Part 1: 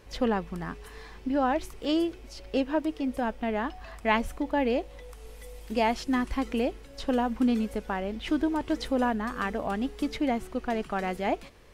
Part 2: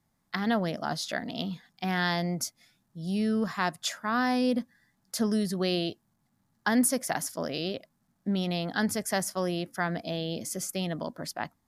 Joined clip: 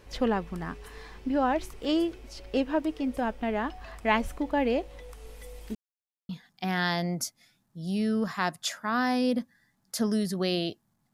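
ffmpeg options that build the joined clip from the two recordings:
-filter_complex "[0:a]apad=whole_dur=11.13,atrim=end=11.13,asplit=2[a][b];[a]atrim=end=5.75,asetpts=PTS-STARTPTS,afade=t=out:st=5.746:d=0.004:c=hsin[c];[b]atrim=start=5.75:end=6.29,asetpts=PTS-STARTPTS,volume=0[d];[1:a]atrim=start=1.49:end=6.33,asetpts=PTS-STARTPTS,afade=t=in:d=0.004:c=hsin[e];[c][d][e]concat=n=3:v=0:a=1"

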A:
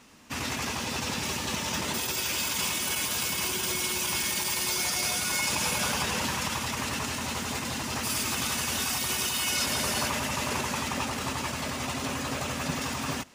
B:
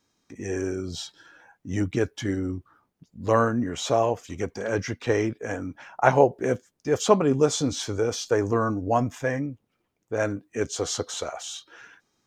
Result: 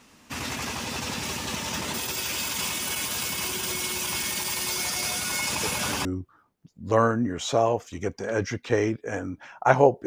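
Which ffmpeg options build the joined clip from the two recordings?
-filter_complex "[1:a]asplit=2[a][b];[0:a]apad=whole_dur=10.06,atrim=end=10.06,atrim=end=6.052[c];[b]atrim=start=2.418:end=6.43[d];[a]atrim=start=2:end=2.42,asetpts=PTS-STARTPTS,volume=-11dB,afade=t=in:d=0.004:c=hsin,afade=t=out:st=0.416:d=0.004:c=hsin,adelay=5630[e];[c][d]acrossfade=d=0.004:c1=hsin:c2=hsin[f];[f][e]amix=inputs=2:normalize=0"

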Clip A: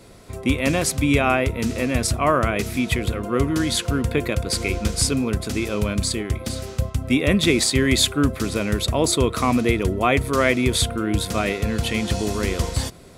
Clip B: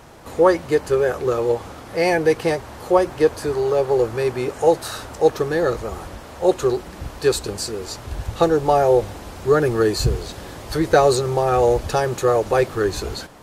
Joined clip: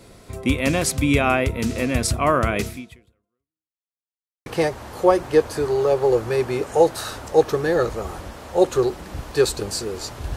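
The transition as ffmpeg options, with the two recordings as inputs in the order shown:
-filter_complex "[0:a]apad=whole_dur=10.36,atrim=end=10.36,asplit=2[a][b];[a]atrim=end=3.83,asetpts=PTS-STARTPTS,afade=t=out:st=2.65:d=1.18:c=exp[c];[b]atrim=start=3.83:end=4.46,asetpts=PTS-STARTPTS,volume=0[d];[1:a]atrim=start=2.33:end=8.23,asetpts=PTS-STARTPTS,afade=t=in:d=0.004:c=hsin[e];[c][d][e]concat=n=3:v=0:a=1"

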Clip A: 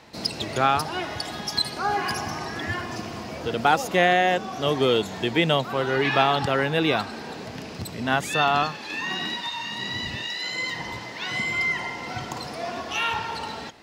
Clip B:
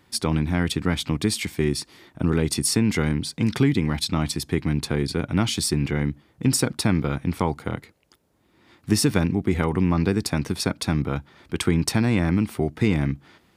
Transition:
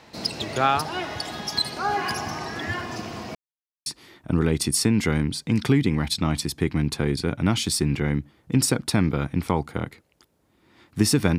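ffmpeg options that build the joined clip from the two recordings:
-filter_complex "[0:a]apad=whole_dur=11.38,atrim=end=11.38,asplit=2[a][b];[a]atrim=end=3.35,asetpts=PTS-STARTPTS,afade=t=out:st=3.346:d=0.004:c=hsin[c];[b]atrim=start=3.35:end=3.86,asetpts=PTS-STARTPTS,volume=0[d];[1:a]atrim=start=1.77:end=9.29,asetpts=PTS-STARTPTS,afade=t=in:d=0.004:c=hsin[e];[c][d][e]concat=n=3:v=0:a=1"

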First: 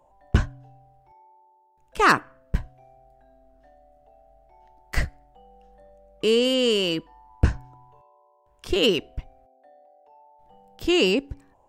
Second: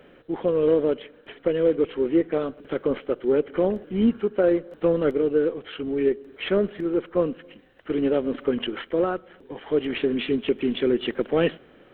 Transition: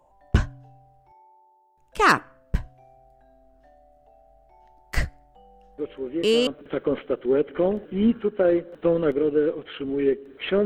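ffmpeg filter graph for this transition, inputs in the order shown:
-filter_complex "[1:a]asplit=2[a][b];[0:a]apad=whole_dur=10.65,atrim=end=10.65,atrim=end=6.472[c];[b]atrim=start=2.458:end=6.64[d];[a]atrim=start=1.77:end=2.46,asetpts=PTS-STARTPTS,volume=-8dB,afade=t=in:d=0.004:c=hsin,afade=t=out:st=0.686:d=0.004:c=hsin,adelay=5780[e];[c][d]acrossfade=d=0.004:c1=hsin:c2=hsin[f];[f][e]amix=inputs=2:normalize=0"

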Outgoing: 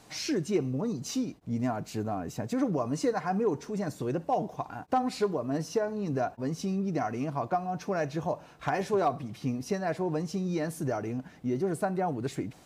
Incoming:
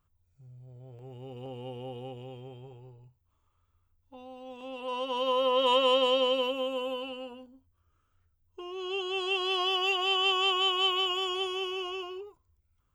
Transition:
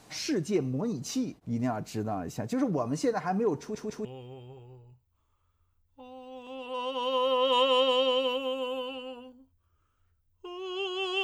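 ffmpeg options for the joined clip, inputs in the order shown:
-filter_complex "[0:a]apad=whole_dur=11.23,atrim=end=11.23,asplit=3[a][b][c];[a]atrim=end=3.752[d];[b]atrim=start=3.598:end=3.752[e];[c]atrim=start=3.598:end=3.752[f];[1:a]atrim=start=2.188:end=9.37[g];[d][e]acrossfade=d=0.004:c1=hsin:c2=hsin[h];[h][f]acrossfade=d=0.004:c1=hsin:c2=hsin[i];[i][g]acrossfade=d=0.004:c1=hsin:c2=hsin"

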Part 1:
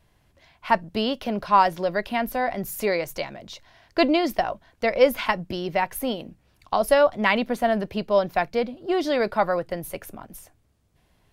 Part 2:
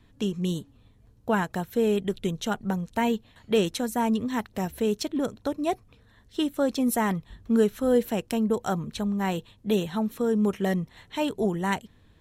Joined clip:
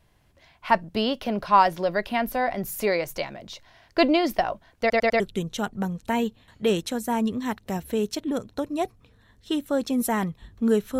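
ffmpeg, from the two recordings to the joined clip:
-filter_complex "[0:a]apad=whole_dur=10.99,atrim=end=10.99,asplit=4[a][b][c][d];[a]atrim=end=4.902[e];[b]atrim=start=4.798:end=4.902[f];[c]atrim=start=4.798:end=4.902[g];[d]atrim=start=4.798:end=4.902[h];[1:a]atrim=start=2.078:end=7.87[i];[e][f]acrossfade=d=0.004:c1=hsin:c2=hsin[j];[j][g]acrossfade=d=0.004:c1=hsin:c2=hsin[k];[k][h]acrossfade=d=0.004:c1=hsin:c2=hsin[l];[l][i]acrossfade=d=0.004:c1=hsin:c2=hsin"

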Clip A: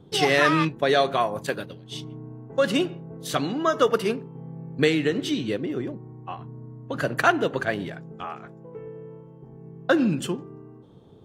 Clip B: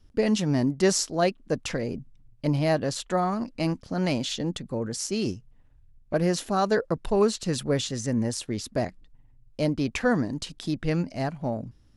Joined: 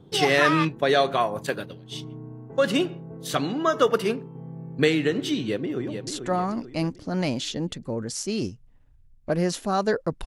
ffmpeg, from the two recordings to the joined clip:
-filter_complex "[0:a]apad=whole_dur=10.26,atrim=end=10.26,atrim=end=6.072[a];[1:a]atrim=start=2.908:end=7.1[b];[a][b]acrossfade=d=0.004:c1=hsin:c2=hsin,asplit=2[c][d];[d]afade=t=in:st=5.44:d=0.01,afade=t=out:st=6.07:d=0.01,aecho=0:1:440|880|1320|1760|2200:0.398107|0.179148|0.0806167|0.0362775|0.0163249[e];[c][e]amix=inputs=2:normalize=0"

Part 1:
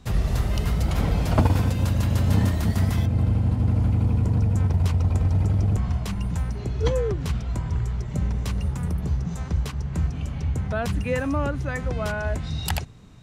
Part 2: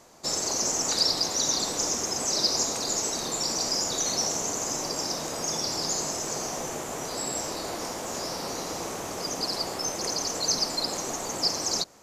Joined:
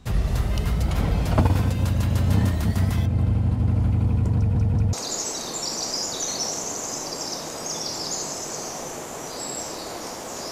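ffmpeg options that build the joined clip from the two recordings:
-filter_complex "[0:a]apad=whole_dur=10.51,atrim=end=10.51,asplit=3[a][b][c];[a]atrim=end=4.552[d];[b]atrim=start=4.358:end=4.552[e];[c]atrim=start=4.358:end=4.552[f];[1:a]atrim=start=2.708:end=8.29[g];[d][e]acrossfade=d=0.004:c1=hsin:c2=hsin[h];[h][f]acrossfade=d=0.004:c1=hsin:c2=hsin[i];[i][g]acrossfade=d=0.004:c1=hsin:c2=hsin"

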